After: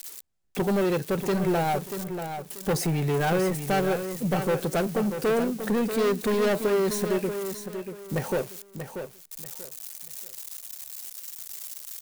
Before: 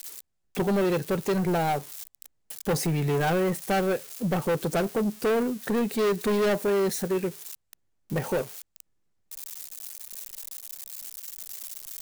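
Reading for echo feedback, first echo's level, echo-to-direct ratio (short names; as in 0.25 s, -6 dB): 27%, -8.5 dB, -8.0 dB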